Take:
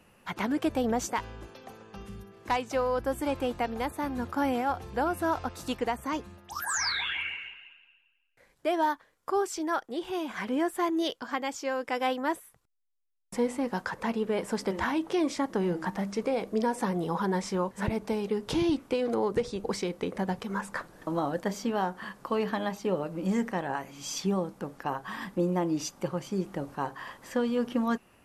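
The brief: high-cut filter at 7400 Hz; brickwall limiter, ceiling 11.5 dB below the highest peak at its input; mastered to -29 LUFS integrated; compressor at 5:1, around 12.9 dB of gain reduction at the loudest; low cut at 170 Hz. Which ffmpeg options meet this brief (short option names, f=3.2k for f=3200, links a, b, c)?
-af "highpass=170,lowpass=7.4k,acompressor=threshold=-38dB:ratio=5,volume=15.5dB,alimiter=limit=-18.5dB:level=0:latency=1"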